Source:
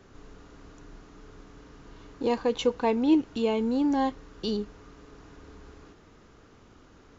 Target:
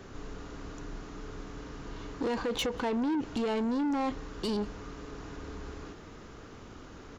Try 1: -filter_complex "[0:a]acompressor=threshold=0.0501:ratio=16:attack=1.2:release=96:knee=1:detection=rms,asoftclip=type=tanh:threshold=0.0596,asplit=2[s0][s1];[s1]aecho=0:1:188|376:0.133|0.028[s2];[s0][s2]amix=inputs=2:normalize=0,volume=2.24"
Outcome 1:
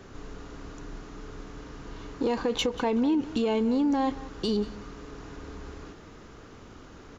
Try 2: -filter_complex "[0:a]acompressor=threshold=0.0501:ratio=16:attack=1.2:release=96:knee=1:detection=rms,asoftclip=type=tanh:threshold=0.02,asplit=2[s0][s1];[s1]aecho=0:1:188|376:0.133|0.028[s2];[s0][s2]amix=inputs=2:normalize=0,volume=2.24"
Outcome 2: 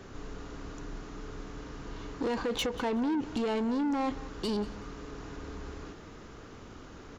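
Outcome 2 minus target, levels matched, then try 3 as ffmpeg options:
echo-to-direct +10 dB
-filter_complex "[0:a]acompressor=threshold=0.0501:ratio=16:attack=1.2:release=96:knee=1:detection=rms,asoftclip=type=tanh:threshold=0.02,asplit=2[s0][s1];[s1]aecho=0:1:188:0.0422[s2];[s0][s2]amix=inputs=2:normalize=0,volume=2.24"

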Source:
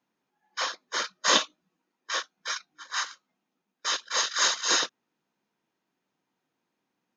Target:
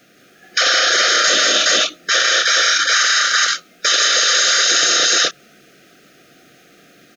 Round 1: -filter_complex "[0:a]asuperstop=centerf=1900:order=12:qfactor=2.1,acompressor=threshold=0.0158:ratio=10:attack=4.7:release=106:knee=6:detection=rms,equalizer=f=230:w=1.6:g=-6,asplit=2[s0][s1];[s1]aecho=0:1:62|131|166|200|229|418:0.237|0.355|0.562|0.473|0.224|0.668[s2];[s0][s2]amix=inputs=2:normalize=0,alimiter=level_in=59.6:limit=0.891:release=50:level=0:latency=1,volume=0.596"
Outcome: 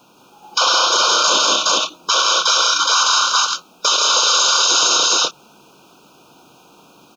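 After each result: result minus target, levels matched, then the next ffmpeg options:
compression: peak gain reduction +9.5 dB; 2 kHz band -6.5 dB
-filter_complex "[0:a]asuperstop=centerf=1900:order=12:qfactor=2.1,acompressor=threshold=0.0501:ratio=10:attack=4.7:release=106:knee=6:detection=rms,equalizer=f=230:w=1.6:g=-6,asplit=2[s0][s1];[s1]aecho=0:1:62|131|166|200|229|418:0.237|0.355|0.562|0.473|0.224|0.668[s2];[s0][s2]amix=inputs=2:normalize=0,alimiter=level_in=59.6:limit=0.891:release=50:level=0:latency=1,volume=0.596"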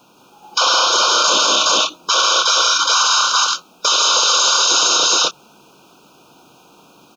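2 kHz band -7.0 dB
-filter_complex "[0:a]asuperstop=centerf=950:order=12:qfactor=2.1,acompressor=threshold=0.0501:ratio=10:attack=4.7:release=106:knee=6:detection=rms,equalizer=f=230:w=1.6:g=-6,asplit=2[s0][s1];[s1]aecho=0:1:62|131|166|200|229|418:0.237|0.355|0.562|0.473|0.224|0.668[s2];[s0][s2]amix=inputs=2:normalize=0,alimiter=level_in=59.6:limit=0.891:release=50:level=0:latency=1,volume=0.596"

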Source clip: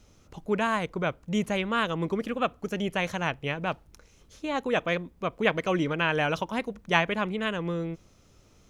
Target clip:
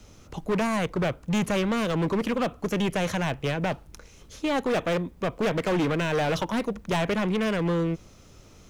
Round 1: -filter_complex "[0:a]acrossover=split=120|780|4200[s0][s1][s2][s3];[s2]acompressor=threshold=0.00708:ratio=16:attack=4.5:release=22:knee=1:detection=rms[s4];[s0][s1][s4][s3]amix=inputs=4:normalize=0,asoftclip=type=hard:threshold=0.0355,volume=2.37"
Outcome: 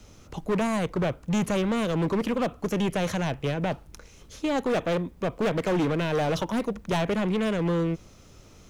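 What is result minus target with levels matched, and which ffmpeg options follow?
compression: peak gain reduction +6.5 dB
-filter_complex "[0:a]acrossover=split=120|780|4200[s0][s1][s2][s3];[s2]acompressor=threshold=0.0158:ratio=16:attack=4.5:release=22:knee=1:detection=rms[s4];[s0][s1][s4][s3]amix=inputs=4:normalize=0,asoftclip=type=hard:threshold=0.0355,volume=2.37"

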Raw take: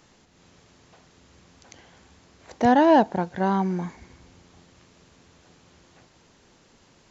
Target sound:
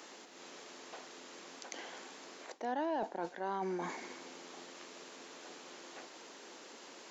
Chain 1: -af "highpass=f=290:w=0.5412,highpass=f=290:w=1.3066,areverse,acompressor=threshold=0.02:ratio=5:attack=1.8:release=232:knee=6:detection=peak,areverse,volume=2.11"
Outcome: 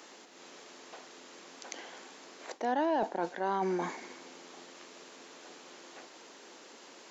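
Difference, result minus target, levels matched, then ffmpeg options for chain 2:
compression: peak gain reduction -6 dB
-af "highpass=f=290:w=0.5412,highpass=f=290:w=1.3066,areverse,acompressor=threshold=0.00841:ratio=5:attack=1.8:release=232:knee=6:detection=peak,areverse,volume=2.11"

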